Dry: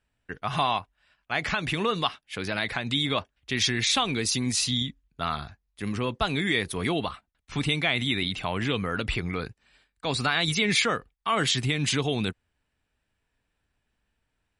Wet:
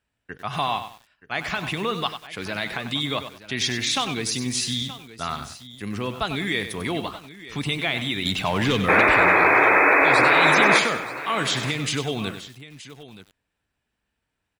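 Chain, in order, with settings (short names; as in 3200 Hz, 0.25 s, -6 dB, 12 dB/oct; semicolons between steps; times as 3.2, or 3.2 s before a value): HPF 80 Hz 6 dB/oct; 8.25–9.01 sample leveller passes 2; 8.88–10.79 painted sound noise 270–2600 Hz -17 dBFS; echo 0.925 s -16 dB; lo-fi delay 96 ms, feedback 35%, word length 7-bit, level -9.5 dB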